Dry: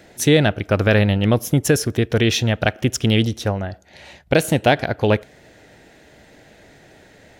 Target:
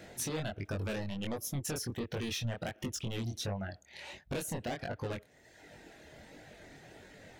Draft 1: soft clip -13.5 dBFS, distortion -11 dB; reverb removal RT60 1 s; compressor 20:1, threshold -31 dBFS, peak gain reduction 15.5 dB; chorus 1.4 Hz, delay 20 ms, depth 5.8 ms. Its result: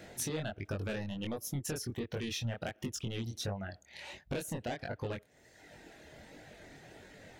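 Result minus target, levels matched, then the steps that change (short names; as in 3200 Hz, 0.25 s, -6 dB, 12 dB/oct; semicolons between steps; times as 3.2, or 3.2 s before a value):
soft clip: distortion -4 dB
change: soft clip -19.5 dBFS, distortion -6 dB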